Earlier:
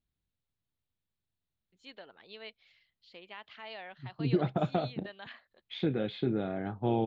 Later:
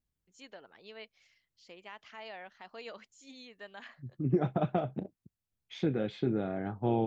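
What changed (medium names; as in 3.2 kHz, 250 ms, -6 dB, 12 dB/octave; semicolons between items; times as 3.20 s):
first voice: entry -1.45 s; master: add resonant high shelf 4.9 kHz +7.5 dB, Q 3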